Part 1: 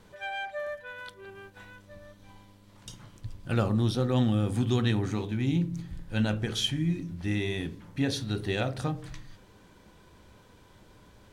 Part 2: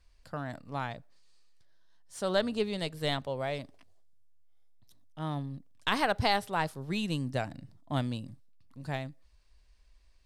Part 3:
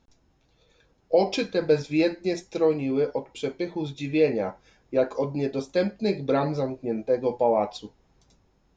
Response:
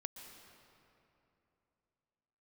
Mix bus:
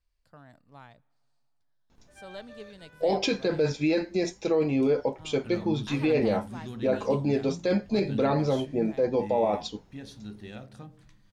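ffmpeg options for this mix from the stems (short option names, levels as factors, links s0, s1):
-filter_complex "[0:a]equalizer=f=210:w=6.3:g=11.5,adelay=1950,volume=0.178[s0];[1:a]volume=0.178,asplit=2[s1][s2];[s2]volume=0.1[s3];[2:a]alimiter=limit=0.112:level=0:latency=1:release=12,adelay=1900,volume=1.33[s4];[3:a]atrim=start_sample=2205[s5];[s3][s5]afir=irnorm=-1:irlink=0[s6];[s0][s1][s4][s6]amix=inputs=4:normalize=0"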